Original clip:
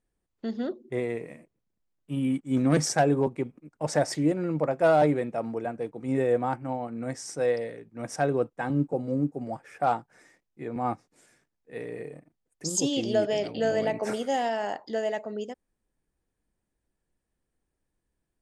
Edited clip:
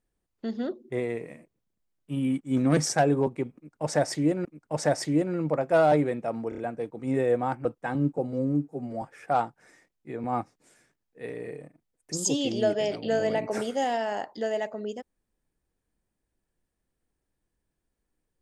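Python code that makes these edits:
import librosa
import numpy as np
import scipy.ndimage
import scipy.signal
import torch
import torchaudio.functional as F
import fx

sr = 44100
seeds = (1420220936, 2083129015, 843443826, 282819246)

y = fx.edit(x, sr, fx.repeat(start_s=3.55, length_s=0.9, count=2),
    fx.stutter(start_s=5.59, slice_s=0.03, count=4),
    fx.cut(start_s=6.66, length_s=1.74),
    fx.stretch_span(start_s=9.08, length_s=0.46, factor=1.5), tone=tone)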